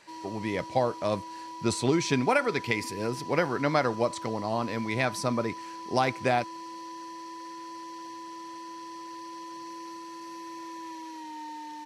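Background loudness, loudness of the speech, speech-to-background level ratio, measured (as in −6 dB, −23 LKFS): −41.0 LKFS, −28.5 LKFS, 12.5 dB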